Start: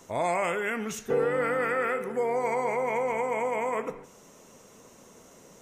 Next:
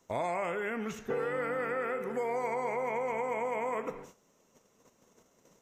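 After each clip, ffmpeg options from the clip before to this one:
ffmpeg -i in.wav -filter_complex "[0:a]agate=range=-15dB:threshold=-50dB:ratio=16:detection=peak,equalizer=frequency=9400:width=4.4:gain=-9.5,acrossover=split=940|2500[link_01][link_02][link_03];[link_01]acompressor=threshold=-33dB:ratio=4[link_04];[link_02]acompressor=threshold=-39dB:ratio=4[link_05];[link_03]acompressor=threshold=-53dB:ratio=4[link_06];[link_04][link_05][link_06]amix=inputs=3:normalize=0" out.wav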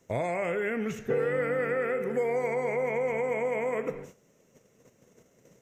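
ffmpeg -i in.wav -af "equalizer=frequency=125:width_type=o:width=1:gain=9,equalizer=frequency=500:width_type=o:width=1:gain=5,equalizer=frequency=1000:width_type=o:width=1:gain=-8,equalizer=frequency=2000:width_type=o:width=1:gain=5,equalizer=frequency=4000:width_type=o:width=1:gain=-4,volume=2dB" out.wav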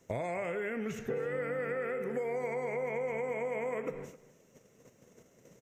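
ffmpeg -i in.wav -af "acompressor=threshold=-33dB:ratio=4,aecho=1:1:261:0.119" out.wav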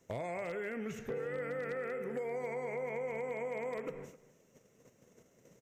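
ffmpeg -i in.wav -af "aeval=exprs='0.0447*(abs(mod(val(0)/0.0447+3,4)-2)-1)':channel_layout=same,volume=-3.5dB" out.wav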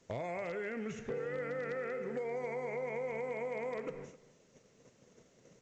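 ffmpeg -i in.wav -ar 16000 -c:a pcm_alaw out.wav

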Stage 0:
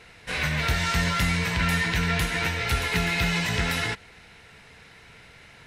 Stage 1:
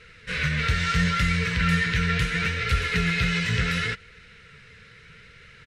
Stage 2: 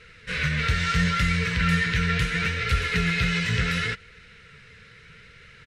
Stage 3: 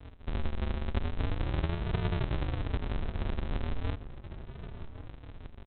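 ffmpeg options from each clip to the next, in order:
ffmpeg -i in.wav -af "firequalizer=gain_entry='entry(170,0);entry(300,-11);entry(470,-1);entry(760,-23);entry(1300,-1);entry(8900,-9);entry(13000,-19)':delay=0.05:min_phase=1,flanger=delay=1.5:depth=8.5:regen=67:speed=0.73:shape=triangular,asoftclip=type=hard:threshold=-20dB,volume=7dB" out.wav
ffmpeg -i in.wav -af anull out.wav
ffmpeg -i in.wav -filter_complex "[0:a]acompressor=threshold=-32dB:ratio=4,aresample=8000,acrusher=samples=42:mix=1:aa=0.000001:lfo=1:lforange=25.2:lforate=0.38,aresample=44100,asplit=2[link_01][link_02];[link_02]adelay=1108,volume=-12dB,highshelf=frequency=4000:gain=-24.9[link_03];[link_01][link_03]amix=inputs=2:normalize=0,volume=3dB" out.wav

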